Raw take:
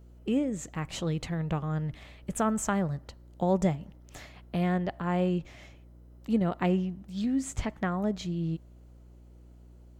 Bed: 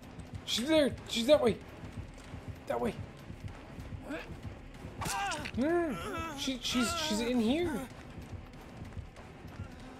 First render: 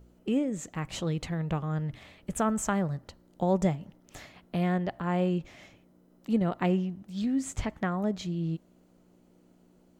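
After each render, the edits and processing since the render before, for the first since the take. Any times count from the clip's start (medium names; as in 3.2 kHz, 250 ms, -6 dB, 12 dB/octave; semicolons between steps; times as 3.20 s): de-hum 60 Hz, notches 2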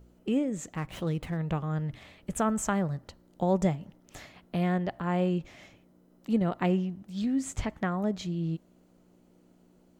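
0.77–1.37 s: median filter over 9 samples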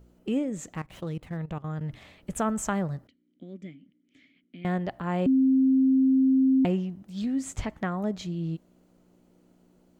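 0.81–1.81 s: level held to a coarse grid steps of 16 dB; 3.07–4.65 s: vowel filter i; 5.26–6.65 s: bleep 264 Hz -17.5 dBFS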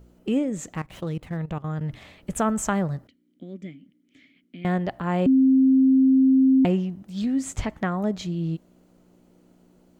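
trim +4 dB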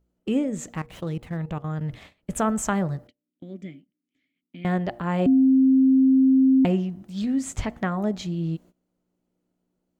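de-hum 118.3 Hz, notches 7; gate -45 dBFS, range -19 dB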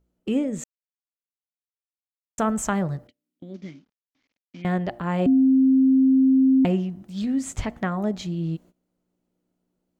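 0.64–2.38 s: mute; 3.54–4.62 s: CVSD coder 32 kbps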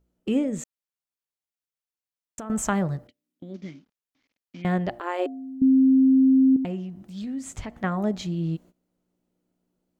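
0.61–2.50 s: compression, threshold -33 dBFS; 5.00–5.62 s: brick-wall FIR high-pass 290 Hz; 6.56–7.84 s: compression 1.5:1, threshold -42 dBFS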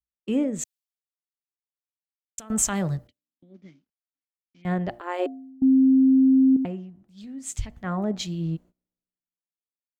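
peak limiter -17 dBFS, peak gain reduction 6 dB; three bands expanded up and down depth 100%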